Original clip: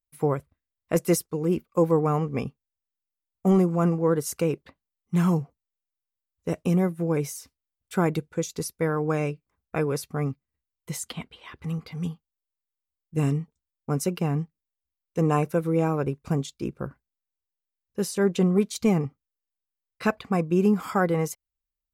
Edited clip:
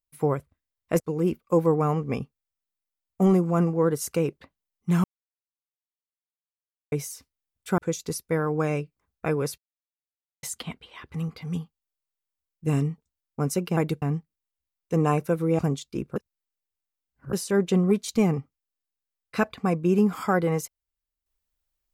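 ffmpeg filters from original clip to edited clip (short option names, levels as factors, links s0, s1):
-filter_complex "[0:a]asplit=12[s0][s1][s2][s3][s4][s5][s6][s7][s8][s9][s10][s11];[s0]atrim=end=1.002[s12];[s1]atrim=start=1.248:end=5.29,asetpts=PTS-STARTPTS,afade=t=out:st=4.038:d=0.004:c=hsin[s13];[s2]atrim=start=5.29:end=7.17,asetpts=PTS-STARTPTS,volume=0[s14];[s3]atrim=start=7.17:end=8.032,asetpts=PTS-STARTPTS,afade=t=in:d=0.004:c=hsin[s15];[s4]atrim=start=8.278:end=10.08,asetpts=PTS-STARTPTS,afade=t=out:st=1.798:d=0.004:c=hsin[s16];[s5]atrim=start=10.08:end=10.93,asetpts=PTS-STARTPTS,volume=0[s17];[s6]atrim=start=10.93:end=14.272,asetpts=PTS-STARTPTS,afade=t=in:d=0.004:c=hsin[s18];[s7]atrim=start=8.028:end=8.282[s19];[s8]atrim=start=14.268:end=15.842[s20];[s9]atrim=start=16.258:end=16.832[s21];[s10]atrim=start=16.828:end=18.002,asetpts=PTS-STARTPTS,areverse[s22];[s11]atrim=start=17.998[s23];[s13][s14][s15]concat=n=3:v=0:a=1[s24];[s12][s24]acrossfade=d=0.004:c1=hsin:c2=hsin[s25];[s16][s17][s18]concat=n=3:v=0:a=1[s26];[s25][s26]acrossfade=d=0.004:c1=hsin:c2=hsin[s27];[s27][s19]acrossfade=d=0.004:c1=hsin:c2=hsin[s28];[s28][s20]acrossfade=d=0.004:c1=hsin:c2=hsin[s29];[s29][s21]acrossfade=d=0.004:c1=hsin:c2=hsin[s30];[s30][s22]acrossfade=d=0.004:c1=hsin:c2=hsin[s31];[s31][s23]acrossfade=d=0.004:c1=hsin:c2=hsin"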